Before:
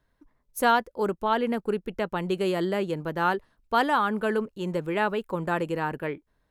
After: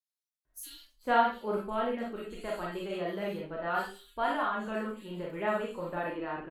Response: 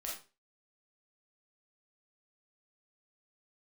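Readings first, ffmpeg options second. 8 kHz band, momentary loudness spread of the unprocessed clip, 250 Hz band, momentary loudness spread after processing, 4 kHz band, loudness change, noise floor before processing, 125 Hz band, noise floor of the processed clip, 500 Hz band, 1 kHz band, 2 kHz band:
−6.5 dB, 8 LU, −8.0 dB, 12 LU, −7.5 dB, −6.0 dB, −73 dBFS, −10.5 dB, below −85 dBFS, −6.0 dB, −5.5 dB, −6.5 dB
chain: -filter_complex "[0:a]flanger=delay=2.7:depth=2.2:regen=52:speed=0.51:shape=triangular,acrossover=split=4000[link_01][link_02];[link_01]adelay=450[link_03];[link_03][link_02]amix=inputs=2:normalize=0[link_04];[1:a]atrim=start_sample=2205[link_05];[link_04][link_05]afir=irnorm=-1:irlink=0,volume=-1.5dB"

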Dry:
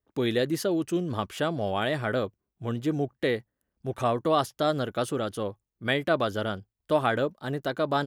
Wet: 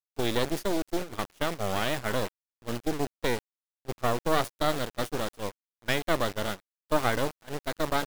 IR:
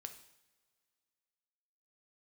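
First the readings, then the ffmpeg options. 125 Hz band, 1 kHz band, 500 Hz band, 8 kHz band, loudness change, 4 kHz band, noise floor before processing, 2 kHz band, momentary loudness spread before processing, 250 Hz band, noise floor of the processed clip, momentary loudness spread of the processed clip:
−3.5 dB, −1.5 dB, −3.5 dB, +4.5 dB, −2.0 dB, +0.5 dB, −85 dBFS, −0.5 dB, 9 LU, −3.5 dB, below −85 dBFS, 11 LU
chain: -filter_complex "[0:a]asplit=2[link_01][link_02];[link_02]adelay=340,highpass=300,lowpass=3400,asoftclip=type=hard:threshold=-20dB,volume=-16dB[link_03];[link_01][link_03]amix=inputs=2:normalize=0,acrusher=bits=3:dc=4:mix=0:aa=0.000001,agate=range=-19dB:threshold=-31dB:ratio=16:detection=peak,volume=1.5dB"

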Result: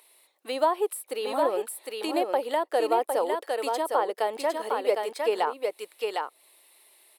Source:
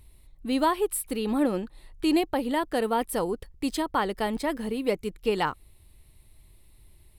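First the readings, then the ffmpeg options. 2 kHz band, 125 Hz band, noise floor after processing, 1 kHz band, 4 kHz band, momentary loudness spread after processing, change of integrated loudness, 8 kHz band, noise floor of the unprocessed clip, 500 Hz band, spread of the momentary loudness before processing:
−1.5 dB, below −20 dB, −65 dBFS, +2.5 dB, −1.0 dB, 8 LU, 0.0 dB, −2.5 dB, −57 dBFS, +3.0 dB, 7 LU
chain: -filter_complex "[0:a]highpass=frequency=490:width=0.5412,highpass=frequency=490:width=1.3066,aecho=1:1:757:0.562,acrossover=split=840[link_01][link_02];[link_02]acompressor=threshold=-42dB:ratio=6[link_03];[link_01][link_03]amix=inputs=2:normalize=0,volume=6.5dB"

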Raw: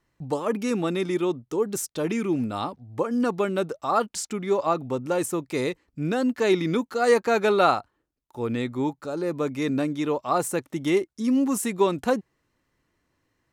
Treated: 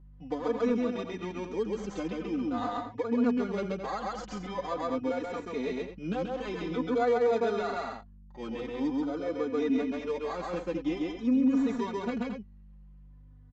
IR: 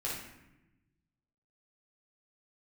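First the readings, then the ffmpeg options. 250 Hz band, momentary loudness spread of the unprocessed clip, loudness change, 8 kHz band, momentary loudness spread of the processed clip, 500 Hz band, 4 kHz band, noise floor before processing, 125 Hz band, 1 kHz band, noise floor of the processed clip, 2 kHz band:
−4.0 dB, 8 LU, −6.0 dB, below −15 dB, 11 LU, −6.5 dB, −9.0 dB, −75 dBFS, −9.5 dB, −8.0 dB, −52 dBFS, −8.5 dB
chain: -filter_complex "[0:a]asplit=2[link_01][link_02];[link_02]acrusher=samples=16:mix=1:aa=0.000001,volume=-4.5dB[link_03];[link_01][link_03]amix=inputs=2:normalize=0,equalizer=frequency=140:width_type=o:width=0.35:gain=-13.5,asplit=2[link_04][link_05];[link_05]aecho=0:1:134.1|218.7:0.794|0.316[link_06];[link_04][link_06]amix=inputs=2:normalize=0,alimiter=limit=-14.5dB:level=0:latency=1:release=142,adynamicsmooth=sensitivity=1.5:basefreq=3300,aecho=1:1:4.1:0.58,aresample=16000,aresample=44100,aeval=exprs='val(0)+0.00708*(sin(2*PI*50*n/s)+sin(2*PI*2*50*n/s)/2+sin(2*PI*3*50*n/s)/3+sin(2*PI*4*50*n/s)/4+sin(2*PI*5*50*n/s)/5)':channel_layout=same,asplit=2[link_07][link_08];[link_08]adelay=3.4,afreqshift=-0.46[link_09];[link_07][link_09]amix=inputs=2:normalize=1,volume=-6dB"

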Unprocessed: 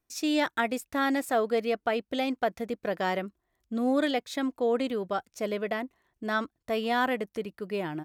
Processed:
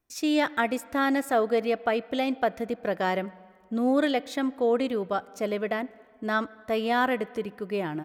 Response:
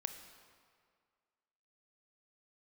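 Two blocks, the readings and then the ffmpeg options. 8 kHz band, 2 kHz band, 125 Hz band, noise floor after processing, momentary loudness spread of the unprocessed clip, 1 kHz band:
−0.5 dB, +2.0 dB, +2.5 dB, −57 dBFS, 8 LU, +2.5 dB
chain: -filter_complex "[0:a]asplit=2[link_01][link_02];[1:a]atrim=start_sample=2205,lowpass=3300[link_03];[link_02][link_03]afir=irnorm=-1:irlink=0,volume=-8dB[link_04];[link_01][link_04]amix=inputs=2:normalize=0"

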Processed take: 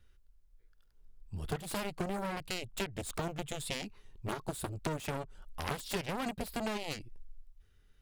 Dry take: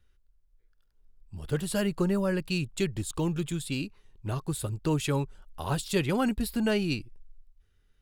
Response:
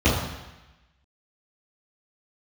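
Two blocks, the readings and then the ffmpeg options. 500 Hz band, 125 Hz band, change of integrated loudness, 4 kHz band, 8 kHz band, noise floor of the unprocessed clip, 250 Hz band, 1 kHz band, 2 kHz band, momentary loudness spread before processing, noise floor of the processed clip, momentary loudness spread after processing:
−8.5 dB, −11.0 dB, −8.5 dB, −4.5 dB, −5.5 dB, −67 dBFS, −11.5 dB, −2.0 dB, −5.0 dB, 9 LU, −65 dBFS, 8 LU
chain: -af "aeval=exprs='0.188*(cos(1*acos(clip(val(0)/0.188,-1,1)))-cos(1*PI/2))+0.0473*(cos(7*acos(clip(val(0)/0.188,-1,1)))-cos(7*PI/2))':channel_layout=same,alimiter=limit=-19dB:level=0:latency=1:release=19,acompressor=threshold=-38dB:ratio=4,volume=4.5dB"

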